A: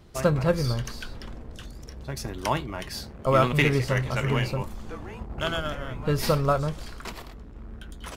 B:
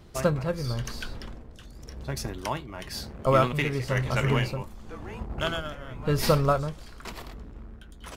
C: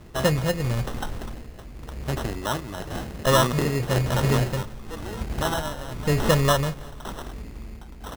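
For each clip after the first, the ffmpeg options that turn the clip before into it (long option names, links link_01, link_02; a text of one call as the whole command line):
ffmpeg -i in.wav -af "tremolo=f=0.95:d=0.6,volume=1.5dB" out.wav
ffmpeg -i in.wav -filter_complex "[0:a]asplit=2[link_01][link_02];[link_02]alimiter=limit=-21dB:level=0:latency=1,volume=-2dB[link_03];[link_01][link_03]amix=inputs=2:normalize=0,acrusher=samples=19:mix=1:aa=0.000001,aecho=1:1:172|344|516:0.0794|0.0389|0.0191" out.wav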